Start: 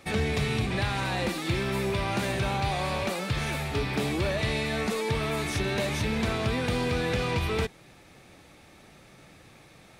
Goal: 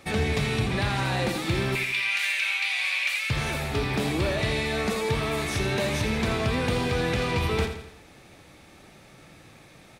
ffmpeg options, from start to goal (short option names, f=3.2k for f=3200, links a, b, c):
-filter_complex "[0:a]asettb=1/sr,asplit=3[a][b][c];[a]atrim=end=1.754[d];[b]atrim=start=1.75:end=3.3,asetpts=PTS-STARTPTS,afade=t=in:d=0.004:c=qsin,afade=t=out:st=1.546:d=0.004:c=qsin,highpass=f=2.3k:t=q:w=3.5[e];[c]atrim=start=3.296[f];[d][e]acrossfade=d=0.004:c1=hsin:c2=qsin[g];[g][f]acrossfade=d=0.004:c1=qsin:c2=hsin,aecho=1:1:84|168|252|336|420:0.355|0.17|0.0817|0.0392|0.0188,volume=1.5dB"